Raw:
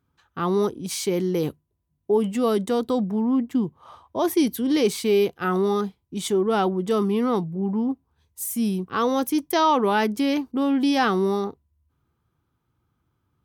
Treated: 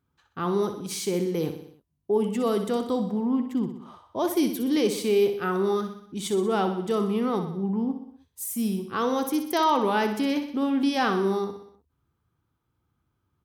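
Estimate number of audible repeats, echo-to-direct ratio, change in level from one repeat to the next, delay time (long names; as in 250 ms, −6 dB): 5, −7.5 dB, −5.0 dB, 62 ms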